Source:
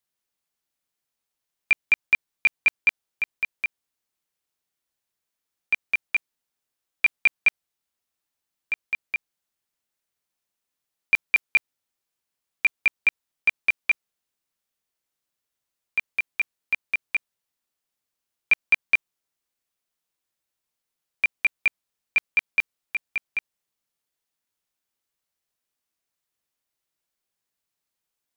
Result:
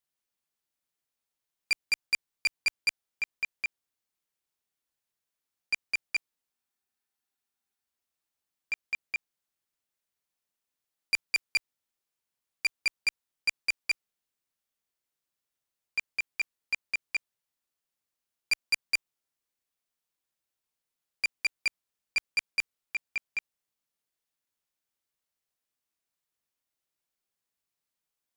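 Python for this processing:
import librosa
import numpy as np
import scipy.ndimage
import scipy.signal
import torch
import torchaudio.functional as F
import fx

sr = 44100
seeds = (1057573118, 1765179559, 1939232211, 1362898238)

y = fx.spec_freeze(x, sr, seeds[0], at_s=6.54, hold_s=1.33)
y = fx.transformer_sat(y, sr, knee_hz=3600.0)
y = F.gain(torch.from_numpy(y), -4.0).numpy()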